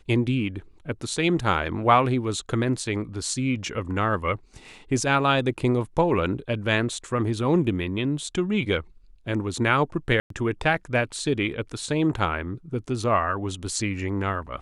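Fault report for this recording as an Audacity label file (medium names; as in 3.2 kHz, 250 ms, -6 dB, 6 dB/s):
10.200000	10.300000	dropout 103 ms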